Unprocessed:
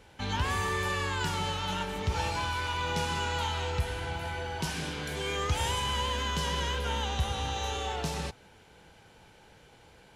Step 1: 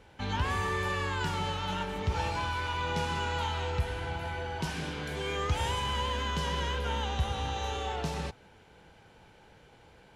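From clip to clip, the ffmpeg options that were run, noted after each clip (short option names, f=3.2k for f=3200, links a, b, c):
-af "highshelf=f=4.3k:g=-8"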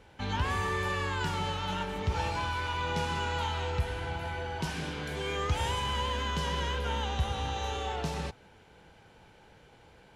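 -af anull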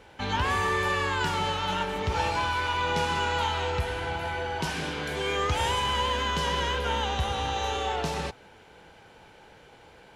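-af "bass=f=250:g=-6,treble=f=4k:g=-1,volume=6dB"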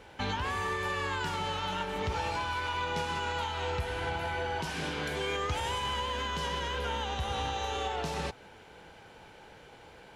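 -af "alimiter=limit=-23.5dB:level=0:latency=1:release=391"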